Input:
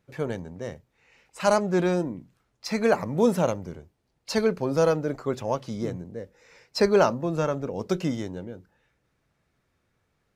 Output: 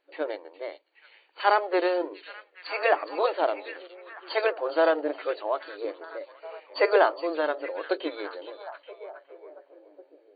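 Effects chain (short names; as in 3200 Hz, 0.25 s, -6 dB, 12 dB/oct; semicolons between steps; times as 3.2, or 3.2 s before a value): FFT band-pass 290–4600 Hz; formant shift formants +2 st; delay with a stepping band-pass 0.415 s, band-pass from 3600 Hz, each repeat -0.7 oct, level -9 dB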